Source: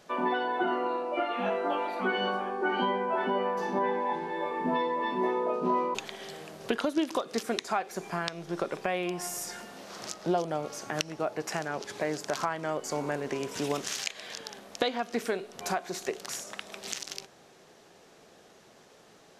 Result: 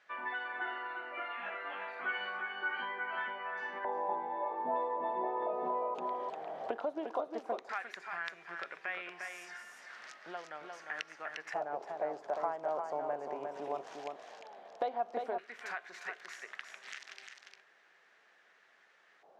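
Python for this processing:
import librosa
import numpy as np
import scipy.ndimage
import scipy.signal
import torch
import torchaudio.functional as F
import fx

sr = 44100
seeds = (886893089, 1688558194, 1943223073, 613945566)

p1 = x + fx.echo_single(x, sr, ms=352, db=-5.0, dry=0)
p2 = fx.filter_lfo_bandpass(p1, sr, shape='square', hz=0.13, low_hz=730.0, high_hz=1800.0, q=2.7)
y = fx.band_squash(p2, sr, depth_pct=70, at=(5.42, 6.77))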